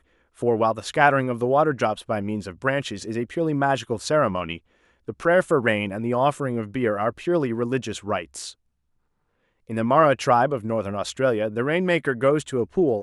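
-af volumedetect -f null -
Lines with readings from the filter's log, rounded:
mean_volume: -23.3 dB
max_volume: -2.3 dB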